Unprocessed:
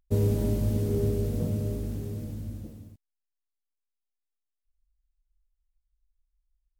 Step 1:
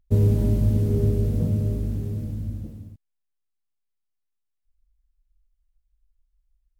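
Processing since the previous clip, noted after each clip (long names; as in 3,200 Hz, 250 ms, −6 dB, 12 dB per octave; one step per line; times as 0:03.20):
bass and treble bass +7 dB, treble −3 dB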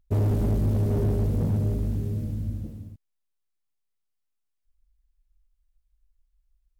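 gain into a clipping stage and back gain 20 dB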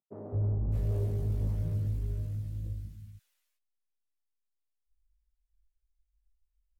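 three-band delay without the direct sound mids, lows, highs 210/610 ms, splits 200/1,300 Hz
multi-voice chorus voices 4, 0.39 Hz, delay 19 ms, depth 1.2 ms
level −7.5 dB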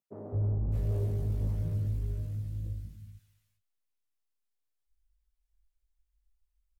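repeating echo 211 ms, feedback 29%, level −21.5 dB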